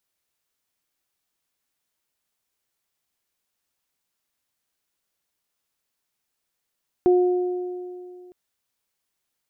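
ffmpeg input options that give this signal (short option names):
-f lavfi -i "aevalsrc='0.237*pow(10,-3*t/2.43)*sin(2*PI*360*t)+0.0531*pow(10,-3*t/2.14)*sin(2*PI*720*t)':d=1.26:s=44100"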